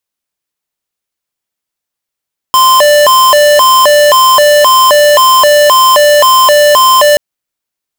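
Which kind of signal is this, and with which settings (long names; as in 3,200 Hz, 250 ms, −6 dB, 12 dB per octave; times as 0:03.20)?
siren hi-lo 590–1,040 Hz 1.9 per second square −5 dBFS 4.63 s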